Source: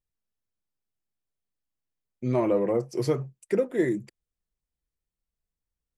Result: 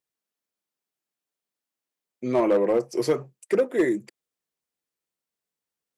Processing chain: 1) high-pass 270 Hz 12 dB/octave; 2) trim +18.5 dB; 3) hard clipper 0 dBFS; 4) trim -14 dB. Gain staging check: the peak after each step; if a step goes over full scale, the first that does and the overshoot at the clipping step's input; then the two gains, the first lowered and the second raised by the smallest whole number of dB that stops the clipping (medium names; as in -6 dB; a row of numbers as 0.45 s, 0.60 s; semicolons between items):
-14.0 dBFS, +4.5 dBFS, 0.0 dBFS, -14.0 dBFS; step 2, 4.5 dB; step 2 +13.5 dB, step 4 -9 dB